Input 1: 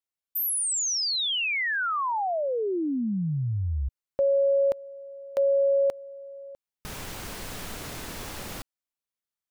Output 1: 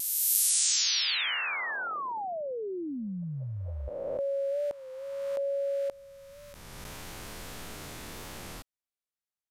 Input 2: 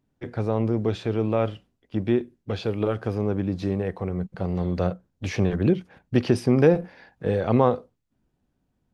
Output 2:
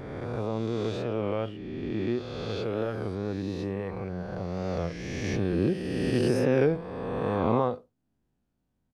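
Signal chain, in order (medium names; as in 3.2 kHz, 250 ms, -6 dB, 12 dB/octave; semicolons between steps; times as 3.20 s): reverse spectral sustain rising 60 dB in 2.27 s; vibrato 0.58 Hz 11 cents; resampled via 32 kHz; warped record 33 1/3 rpm, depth 100 cents; trim -8.5 dB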